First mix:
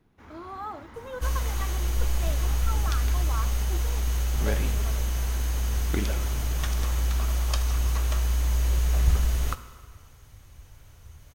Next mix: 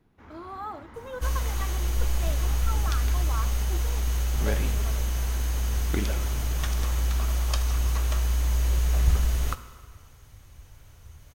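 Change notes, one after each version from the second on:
first sound: add high shelf 4400 Hz -9 dB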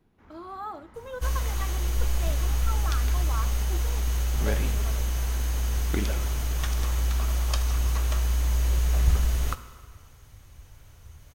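first sound -7.0 dB

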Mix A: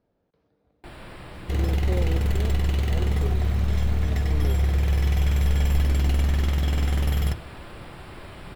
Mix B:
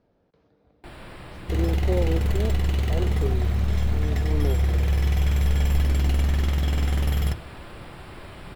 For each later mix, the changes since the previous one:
speech +6.0 dB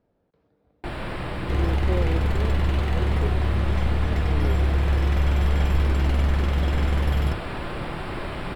speech -3.5 dB; first sound +11.0 dB; master: add high shelf 5500 Hz -10.5 dB

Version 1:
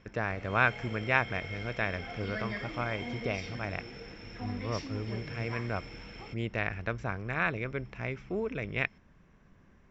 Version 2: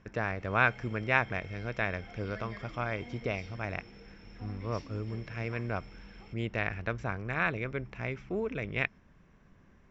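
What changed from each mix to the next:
background -9.0 dB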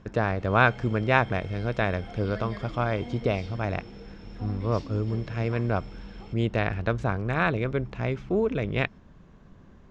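master: remove rippled Chebyshev low-pass 7600 Hz, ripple 9 dB

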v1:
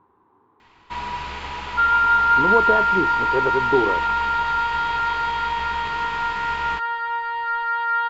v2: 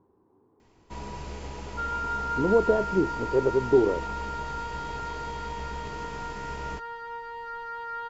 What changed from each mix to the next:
master: add band shelf 1900 Hz -14.5 dB 2.6 oct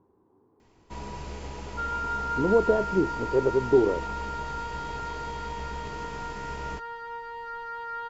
none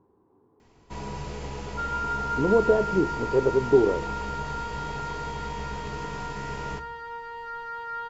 reverb: on, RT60 0.75 s

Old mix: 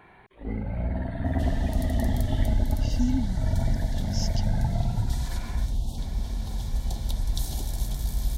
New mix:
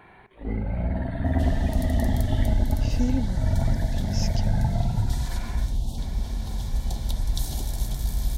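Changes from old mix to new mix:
speech: remove brick-wall FIR band-stop 300–2700 Hz; reverb: on, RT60 0.60 s

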